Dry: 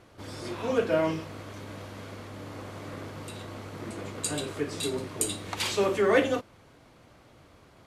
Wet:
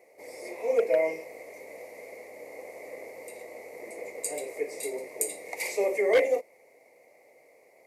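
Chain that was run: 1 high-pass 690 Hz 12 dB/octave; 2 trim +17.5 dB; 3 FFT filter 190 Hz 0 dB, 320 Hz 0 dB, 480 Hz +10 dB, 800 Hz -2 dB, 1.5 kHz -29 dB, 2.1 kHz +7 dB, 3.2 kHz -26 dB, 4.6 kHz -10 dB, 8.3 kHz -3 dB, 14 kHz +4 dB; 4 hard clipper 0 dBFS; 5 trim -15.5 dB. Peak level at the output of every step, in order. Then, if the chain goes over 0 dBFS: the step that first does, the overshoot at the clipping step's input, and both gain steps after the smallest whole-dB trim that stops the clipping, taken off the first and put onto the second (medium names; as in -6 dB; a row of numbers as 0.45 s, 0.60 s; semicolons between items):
-12.0 dBFS, +5.5 dBFS, +8.0 dBFS, 0.0 dBFS, -15.5 dBFS; step 2, 8.0 dB; step 2 +9.5 dB, step 5 -7.5 dB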